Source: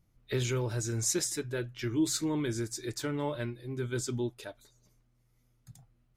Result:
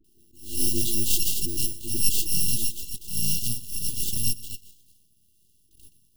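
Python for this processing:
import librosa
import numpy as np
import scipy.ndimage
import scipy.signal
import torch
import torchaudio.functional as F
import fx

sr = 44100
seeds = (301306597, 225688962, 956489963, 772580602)

p1 = fx.bit_reversed(x, sr, seeds[0], block=128)
p2 = fx.filter_sweep_highpass(p1, sr, from_hz=140.0, to_hz=560.0, start_s=1.98, end_s=3.48, q=1.4)
p3 = np.clip(p2, -10.0 ** (-29.5 / 20.0), 10.0 ** (-29.5 / 20.0))
p4 = p2 + (p3 * 10.0 ** (-6.0 / 20.0))
p5 = fx.dispersion(p4, sr, late='highs', ms=43.0, hz=430.0)
p6 = np.abs(p5)
p7 = fx.brickwall_bandstop(p6, sr, low_hz=440.0, high_hz=2700.0)
p8 = p7 + fx.echo_single(p7, sr, ms=122, db=-19.5, dry=0)
p9 = fx.attack_slew(p8, sr, db_per_s=120.0)
y = p9 * 10.0 ** (8.5 / 20.0)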